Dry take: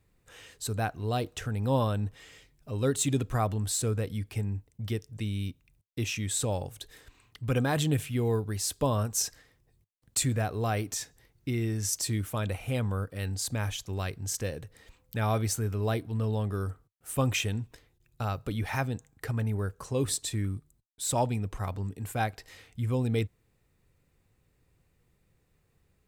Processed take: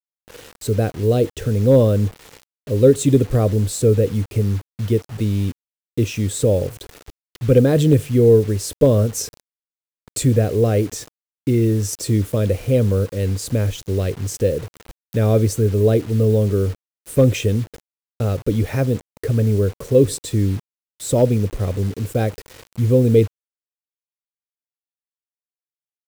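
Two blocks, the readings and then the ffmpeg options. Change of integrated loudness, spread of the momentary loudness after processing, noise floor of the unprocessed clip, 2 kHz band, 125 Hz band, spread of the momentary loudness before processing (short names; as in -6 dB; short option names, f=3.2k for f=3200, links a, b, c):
+12.5 dB, 11 LU, -71 dBFS, +2.5 dB, +12.5 dB, 10 LU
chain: -af "aeval=exprs='0.133*(abs(mod(val(0)/0.133+3,4)-2)-1)':c=same,lowshelf=f=660:t=q:w=3:g=9,acrusher=bits=6:mix=0:aa=0.000001,volume=3dB"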